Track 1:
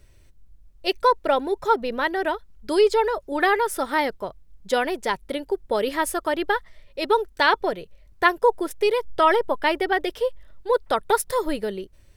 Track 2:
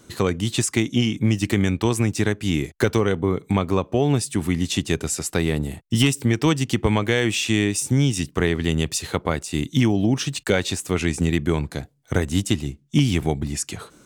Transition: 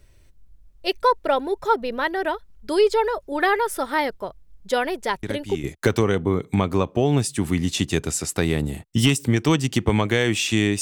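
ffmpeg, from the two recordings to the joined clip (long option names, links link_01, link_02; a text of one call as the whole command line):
ffmpeg -i cue0.wav -i cue1.wav -filter_complex "[1:a]asplit=2[link_01][link_02];[0:a]apad=whole_dur=10.81,atrim=end=10.81,atrim=end=5.642[link_03];[link_02]atrim=start=2.608:end=7.78[link_04];[link_01]atrim=start=2.2:end=2.61,asetpts=PTS-STARTPTS,volume=-9.5dB,afade=type=in:duration=0.004:curve=hsin,afade=type=out:start_time=0.406:duration=0.004:curve=hsin,adelay=5230[link_05];[link_03][link_04]acrossfade=duration=0.004:curve1=hsin:curve2=hsin[link_06];[link_06][link_05]amix=inputs=2:normalize=0" out.wav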